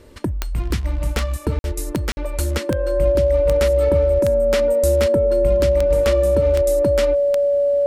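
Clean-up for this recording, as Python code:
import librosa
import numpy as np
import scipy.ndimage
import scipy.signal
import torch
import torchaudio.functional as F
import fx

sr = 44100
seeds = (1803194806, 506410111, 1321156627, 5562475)

y = fx.fix_declick_ar(x, sr, threshold=10.0)
y = fx.notch(y, sr, hz=570.0, q=30.0)
y = fx.fix_interpolate(y, sr, at_s=(1.59, 2.12), length_ms=51.0)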